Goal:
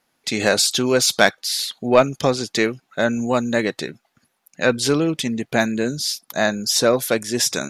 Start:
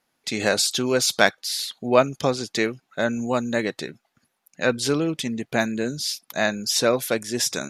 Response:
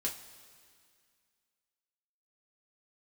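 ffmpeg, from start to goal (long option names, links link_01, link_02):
-filter_complex "[0:a]asettb=1/sr,asplit=3[link_01][link_02][link_03];[link_01]atrim=end=5.954[link_04];[link_02]atrim=start=5.95:end=7.09,asetpts=PTS-STARTPTS,afade=type=in:duration=0.004:curve=qsin,afade=type=out:start_time=1.136:duration=0.004:curve=qsin,equalizer=frequency=2500:width_type=o:width=0.79:gain=-5[link_05];[link_03]atrim=start=7.086[link_06];[link_04][link_05]acrossfade=duration=0.004:curve1=hsin:curve2=qsin[link_07];[link_07][link_06]acrossfade=duration=0.004:curve1=qsin:curve2=hsin,acontrast=28,volume=-1dB"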